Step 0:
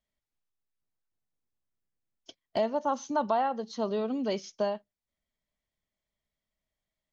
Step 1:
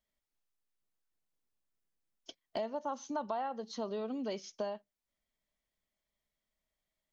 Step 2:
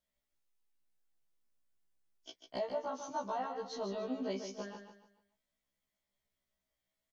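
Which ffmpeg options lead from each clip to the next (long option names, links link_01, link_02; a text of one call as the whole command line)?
ffmpeg -i in.wav -af "equalizer=frequency=97:width_type=o:width=1.5:gain=-6,acompressor=threshold=-40dB:ratio=2" out.wav
ffmpeg -i in.wav -filter_complex "[0:a]asplit=2[link_01][link_02];[link_02]aecho=0:1:146|292|438|584:0.422|0.148|0.0517|0.0181[link_03];[link_01][link_03]amix=inputs=2:normalize=0,afftfilt=real='re*1.73*eq(mod(b,3),0)':imag='im*1.73*eq(mod(b,3),0)':win_size=2048:overlap=0.75,volume=1.5dB" out.wav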